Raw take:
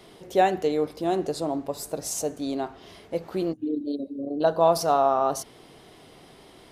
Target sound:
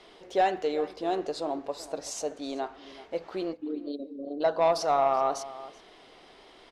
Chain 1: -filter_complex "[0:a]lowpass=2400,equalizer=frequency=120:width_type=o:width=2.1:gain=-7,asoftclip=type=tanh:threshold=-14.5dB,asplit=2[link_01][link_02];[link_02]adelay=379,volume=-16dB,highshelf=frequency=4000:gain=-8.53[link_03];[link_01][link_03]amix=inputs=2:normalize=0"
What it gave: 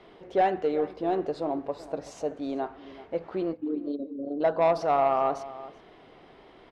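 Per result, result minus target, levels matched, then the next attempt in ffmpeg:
4,000 Hz band −9.0 dB; 125 Hz band +5.0 dB
-filter_complex "[0:a]lowpass=5300,equalizer=frequency=120:width_type=o:width=2.1:gain=-7,asoftclip=type=tanh:threshold=-14.5dB,asplit=2[link_01][link_02];[link_02]adelay=379,volume=-16dB,highshelf=frequency=4000:gain=-8.53[link_03];[link_01][link_03]amix=inputs=2:normalize=0"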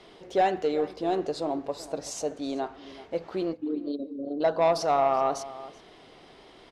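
125 Hz band +4.5 dB
-filter_complex "[0:a]lowpass=5300,equalizer=frequency=120:width_type=o:width=2.1:gain=-16.5,asoftclip=type=tanh:threshold=-14.5dB,asplit=2[link_01][link_02];[link_02]adelay=379,volume=-16dB,highshelf=frequency=4000:gain=-8.53[link_03];[link_01][link_03]amix=inputs=2:normalize=0"

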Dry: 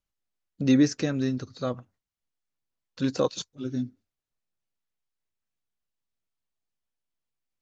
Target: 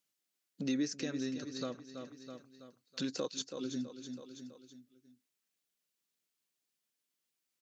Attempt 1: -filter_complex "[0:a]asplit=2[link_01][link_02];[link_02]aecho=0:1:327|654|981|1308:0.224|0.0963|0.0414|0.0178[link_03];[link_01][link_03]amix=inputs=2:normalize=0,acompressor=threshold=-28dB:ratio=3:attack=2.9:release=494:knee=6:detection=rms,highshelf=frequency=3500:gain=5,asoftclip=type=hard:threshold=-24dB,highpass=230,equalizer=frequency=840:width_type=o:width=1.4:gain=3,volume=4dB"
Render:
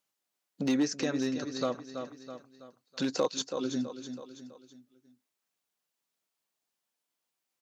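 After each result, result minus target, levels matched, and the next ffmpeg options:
1,000 Hz band +5.0 dB; downward compressor: peak gain reduction −5 dB
-filter_complex "[0:a]asplit=2[link_01][link_02];[link_02]aecho=0:1:327|654|981|1308:0.224|0.0963|0.0414|0.0178[link_03];[link_01][link_03]amix=inputs=2:normalize=0,acompressor=threshold=-28dB:ratio=3:attack=2.9:release=494:knee=6:detection=rms,highshelf=frequency=3500:gain=5,asoftclip=type=hard:threshold=-24dB,highpass=230,equalizer=frequency=840:width_type=o:width=1.4:gain=-6.5,volume=4dB"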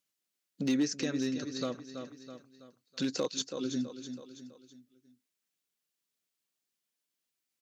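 downward compressor: peak gain reduction −5 dB
-filter_complex "[0:a]asplit=2[link_01][link_02];[link_02]aecho=0:1:327|654|981|1308:0.224|0.0963|0.0414|0.0178[link_03];[link_01][link_03]amix=inputs=2:normalize=0,acompressor=threshold=-35.5dB:ratio=3:attack=2.9:release=494:knee=6:detection=rms,highshelf=frequency=3500:gain=5,asoftclip=type=hard:threshold=-24dB,highpass=230,equalizer=frequency=840:width_type=o:width=1.4:gain=-6.5,volume=4dB"

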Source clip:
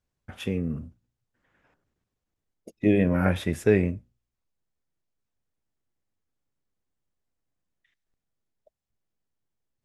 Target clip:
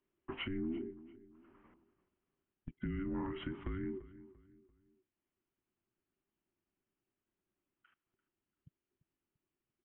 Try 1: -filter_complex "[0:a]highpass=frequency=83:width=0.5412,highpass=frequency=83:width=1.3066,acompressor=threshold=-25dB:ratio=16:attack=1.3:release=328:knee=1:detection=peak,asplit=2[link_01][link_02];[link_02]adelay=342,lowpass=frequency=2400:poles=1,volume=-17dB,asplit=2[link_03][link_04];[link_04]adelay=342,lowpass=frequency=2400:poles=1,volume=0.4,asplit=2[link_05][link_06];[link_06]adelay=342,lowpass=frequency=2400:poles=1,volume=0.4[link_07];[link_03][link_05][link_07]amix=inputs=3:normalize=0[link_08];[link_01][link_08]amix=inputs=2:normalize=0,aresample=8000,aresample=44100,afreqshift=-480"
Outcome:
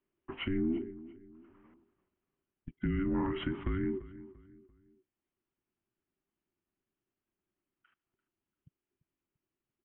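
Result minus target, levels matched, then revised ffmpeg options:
downward compressor: peak gain reduction −7 dB
-filter_complex "[0:a]highpass=frequency=83:width=0.5412,highpass=frequency=83:width=1.3066,acompressor=threshold=-32.5dB:ratio=16:attack=1.3:release=328:knee=1:detection=peak,asplit=2[link_01][link_02];[link_02]adelay=342,lowpass=frequency=2400:poles=1,volume=-17dB,asplit=2[link_03][link_04];[link_04]adelay=342,lowpass=frequency=2400:poles=1,volume=0.4,asplit=2[link_05][link_06];[link_06]adelay=342,lowpass=frequency=2400:poles=1,volume=0.4[link_07];[link_03][link_05][link_07]amix=inputs=3:normalize=0[link_08];[link_01][link_08]amix=inputs=2:normalize=0,aresample=8000,aresample=44100,afreqshift=-480"

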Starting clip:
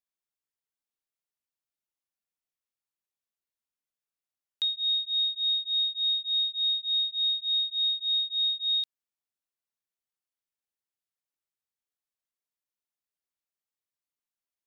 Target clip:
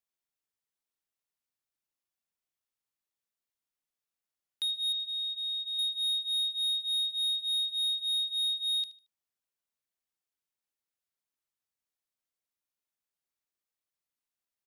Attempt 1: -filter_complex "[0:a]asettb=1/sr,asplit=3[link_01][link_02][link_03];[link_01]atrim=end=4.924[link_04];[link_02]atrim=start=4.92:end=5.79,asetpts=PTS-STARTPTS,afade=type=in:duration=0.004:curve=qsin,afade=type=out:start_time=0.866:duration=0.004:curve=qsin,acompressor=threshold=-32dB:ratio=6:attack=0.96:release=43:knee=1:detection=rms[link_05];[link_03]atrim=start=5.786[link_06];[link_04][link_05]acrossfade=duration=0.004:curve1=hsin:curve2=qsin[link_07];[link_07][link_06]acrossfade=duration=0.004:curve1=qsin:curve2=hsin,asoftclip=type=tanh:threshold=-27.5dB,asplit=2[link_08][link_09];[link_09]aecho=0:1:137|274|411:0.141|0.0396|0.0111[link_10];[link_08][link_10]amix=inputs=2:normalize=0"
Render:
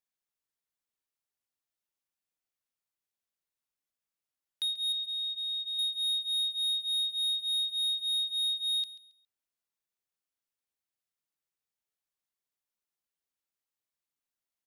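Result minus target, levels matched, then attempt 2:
echo 62 ms late
-filter_complex "[0:a]asettb=1/sr,asplit=3[link_01][link_02][link_03];[link_01]atrim=end=4.924[link_04];[link_02]atrim=start=4.92:end=5.79,asetpts=PTS-STARTPTS,afade=type=in:duration=0.004:curve=qsin,afade=type=out:start_time=0.866:duration=0.004:curve=qsin,acompressor=threshold=-32dB:ratio=6:attack=0.96:release=43:knee=1:detection=rms[link_05];[link_03]atrim=start=5.786[link_06];[link_04][link_05]acrossfade=duration=0.004:curve1=hsin:curve2=qsin[link_07];[link_07][link_06]acrossfade=duration=0.004:curve1=qsin:curve2=hsin,asoftclip=type=tanh:threshold=-27.5dB,asplit=2[link_08][link_09];[link_09]aecho=0:1:75|150|225:0.141|0.0396|0.0111[link_10];[link_08][link_10]amix=inputs=2:normalize=0"

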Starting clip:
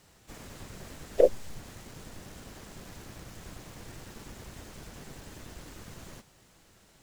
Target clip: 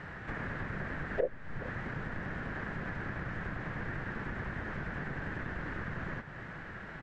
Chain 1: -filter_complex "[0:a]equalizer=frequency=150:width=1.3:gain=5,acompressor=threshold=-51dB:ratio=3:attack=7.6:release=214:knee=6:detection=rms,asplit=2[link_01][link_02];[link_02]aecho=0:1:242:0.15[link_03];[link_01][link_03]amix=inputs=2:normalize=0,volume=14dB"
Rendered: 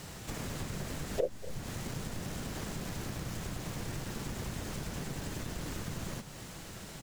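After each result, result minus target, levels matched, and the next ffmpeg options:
echo 179 ms early; 2,000 Hz band −8.0 dB
-filter_complex "[0:a]equalizer=frequency=150:width=1.3:gain=5,acompressor=threshold=-51dB:ratio=3:attack=7.6:release=214:knee=6:detection=rms,asplit=2[link_01][link_02];[link_02]aecho=0:1:421:0.15[link_03];[link_01][link_03]amix=inputs=2:normalize=0,volume=14dB"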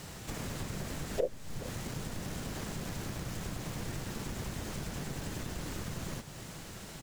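2,000 Hz band −8.0 dB
-filter_complex "[0:a]lowpass=frequency=1700:width_type=q:width=4.2,equalizer=frequency=150:width=1.3:gain=5,acompressor=threshold=-51dB:ratio=3:attack=7.6:release=214:knee=6:detection=rms,asplit=2[link_01][link_02];[link_02]aecho=0:1:421:0.15[link_03];[link_01][link_03]amix=inputs=2:normalize=0,volume=14dB"

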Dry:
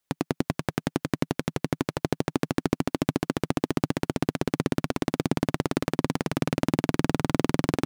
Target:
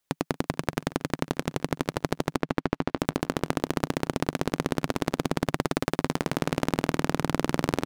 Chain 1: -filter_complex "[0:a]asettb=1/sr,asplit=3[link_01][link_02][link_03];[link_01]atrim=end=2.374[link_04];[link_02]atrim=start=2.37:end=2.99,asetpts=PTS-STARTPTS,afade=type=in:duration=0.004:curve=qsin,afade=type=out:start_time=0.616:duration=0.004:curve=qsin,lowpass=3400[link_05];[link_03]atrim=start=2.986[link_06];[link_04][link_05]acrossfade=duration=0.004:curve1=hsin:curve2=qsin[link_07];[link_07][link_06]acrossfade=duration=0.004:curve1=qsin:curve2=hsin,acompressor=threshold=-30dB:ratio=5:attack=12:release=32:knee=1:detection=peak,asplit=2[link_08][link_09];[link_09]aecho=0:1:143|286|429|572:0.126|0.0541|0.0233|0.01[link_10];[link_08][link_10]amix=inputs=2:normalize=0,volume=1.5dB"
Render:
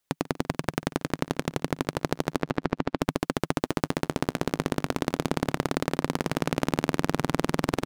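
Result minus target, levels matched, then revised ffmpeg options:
echo 89 ms early
-filter_complex "[0:a]asettb=1/sr,asplit=3[link_01][link_02][link_03];[link_01]atrim=end=2.374[link_04];[link_02]atrim=start=2.37:end=2.99,asetpts=PTS-STARTPTS,afade=type=in:duration=0.004:curve=qsin,afade=type=out:start_time=0.616:duration=0.004:curve=qsin,lowpass=3400[link_05];[link_03]atrim=start=2.986[link_06];[link_04][link_05]acrossfade=duration=0.004:curve1=hsin:curve2=qsin[link_07];[link_07][link_06]acrossfade=duration=0.004:curve1=qsin:curve2=hsin,acompressor=threshold=-30dB:ratio=5:attack=12:release=32:knee=1:detection=peak,asplit=2[link_08][link_09];[link_09]aecho=0:1:232|464|696|928:0.126|0.0541|0.0233|0.01[link_10];[link_08][link_10]amix=inputs=2:normalize=0,volume=1.5dB"

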